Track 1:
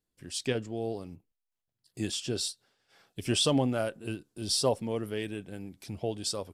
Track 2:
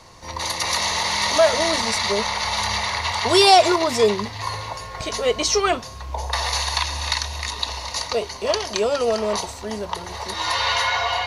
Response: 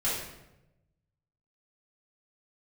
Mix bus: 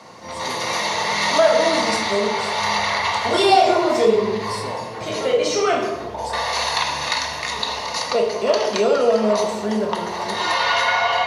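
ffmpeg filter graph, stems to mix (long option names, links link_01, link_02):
-filter_complex "[0:a]volume=-9dB,asplit=3[link_01][link_02][link_03];[link_02]volume=-10.5dB[link_04];[1:a]highpass=frequency=130:width=0.5412,highpass=frequency=130:width=1.3066,highshelf=frequency=3500:gain=-9,volume=2.5dB,asplit=2[link_05][link_06];[link_06]volume=-7dB[link_07];[link_03]apad=whole_len=496979[link_08];[link_05][link_08]sidechaincompress=threshold=-55dB:ratio=8:attack=7.6:release=182[link_09];[2:a]atrim=start_sample=2205[link_10];[link_04][link_07]amix=inputs=2:normalize=0[link_11];[link_11][link_10]afir=irnorm=-1:irlink=0[link_12];[link_01][link_09][link_12]amix=inputs=3:normalize=0,acompressor=threshold=-19dB:ratio=1.5"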